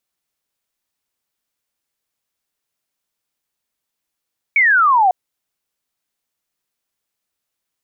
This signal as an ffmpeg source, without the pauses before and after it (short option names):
-f lavfi -i "aevalsrc='0.335*clip(t/0.002,0,1)*clip((0.55-t)/0.002,0,1)*sin(2*PI*2300*0.55/log(710/2300)*(exp(log(710/2300)*t/0.55)-1))':d=0.55:s=44100"